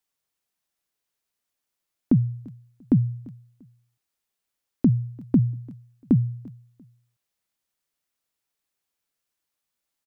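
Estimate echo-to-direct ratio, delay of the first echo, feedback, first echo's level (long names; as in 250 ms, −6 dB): −23.0 dB, 344 ms, 30%, −23.5 dB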